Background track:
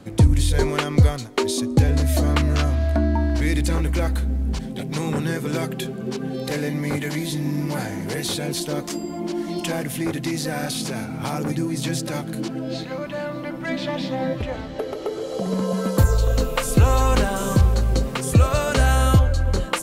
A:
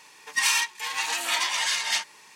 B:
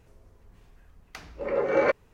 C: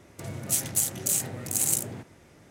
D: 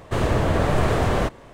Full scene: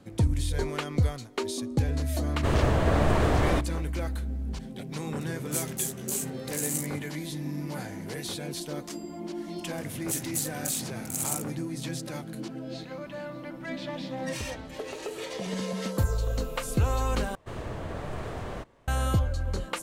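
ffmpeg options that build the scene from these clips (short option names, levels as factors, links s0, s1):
-filter_complex "[4:a]asplit=2[s0][s1];[3:a]asplit=2[s2][s3];[0:a]volume=0.335[s4];[s2]asplit=2[s5][s6];[s6]adelay=14,volume=0.75[s7];[s5][s7]amix=inputs=2:normalize=0[s8];[s4]asplit=2[s9][s10];[s9]atrim=end=17.354[s11];[s1]atrim=end=1.53,asetpts=PTS-STARTPTS,volume=0.168[s12];[s10]atrim=start=18.876[s13];[s0]atrim=end=1.53,asetpts=PTS-STARTPTS,volume=0.631,afade=t=in:d=0.004:c=hsin,afade=t=out:st=1.526:d=0.004:c=hsin,adelay=2320[s14];[s8]atrim=end=2.5,asetpts=PTS-STARTPTS,volume=0.398,afade=t=in:d=0.004:c=hsin,afade=t=out:st=2.496:d=0.004:c=hsin,adelay=5020[s15];[s3]atrim=end=2.5,asetpts=PTS-STARTPTS,volume=0.501,afade=t=in:d=0.004:c=hsin,afade=t=out:st=2.496:d=0.004:c=hsin,adelay=9590[s16];[1:a]atrim=end=2.35,asetpts=PTS-STARTPTS,volume=0.15,afade=t=in:d=0.004:c=hsin,afade=t=out:st=2.346:d=0.004:c=hsin,adelay=13900[s17];[s11][s12]acrossfade=d=0.004:c1=hsin:c2=hsin[s18];[s18][s13]acrossfade=d=0.004:c1=hsin:c2=hsin[s19];[s19][s14][s15][s16][s17]amix=inputs=5:normalize=0"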